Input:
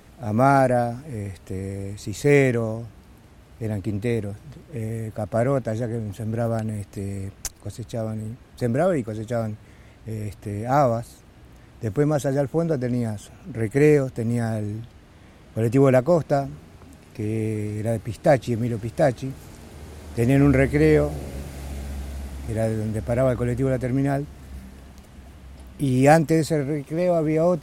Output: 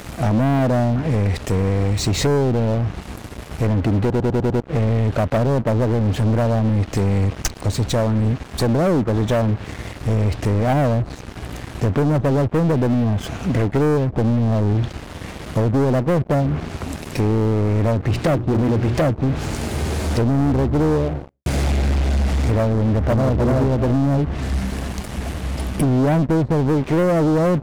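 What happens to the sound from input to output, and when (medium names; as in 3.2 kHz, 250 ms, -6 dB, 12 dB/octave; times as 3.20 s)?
4.00 s: stutter in place 0.10 s, 6 plays
17.98–19.05 s: hum notches 60/120/180/240/300/360 Hz
20.54–21.46 s: studio fade out
22.80–23.38 s: echo throw 300 ms, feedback 15%, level -0.5 dB
whole clip: low-pass that closes with the level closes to 420 Hz, closed at -18 dBFS; compression 5:1, threshold -27 dBFS; waveshaping leveller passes 5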